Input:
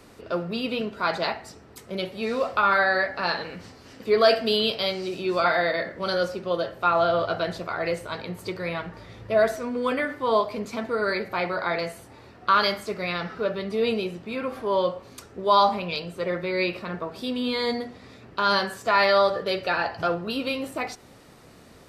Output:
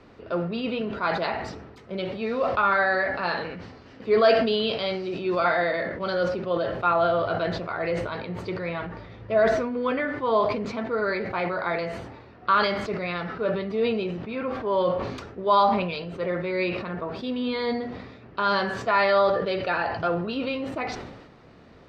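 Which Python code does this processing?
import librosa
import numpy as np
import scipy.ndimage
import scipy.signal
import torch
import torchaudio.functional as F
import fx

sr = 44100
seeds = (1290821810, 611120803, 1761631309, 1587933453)

y = fx.air_absorb(x, sr, metres=210.0)
y = fx.sustainer(y, sr, db_per_s=48.0)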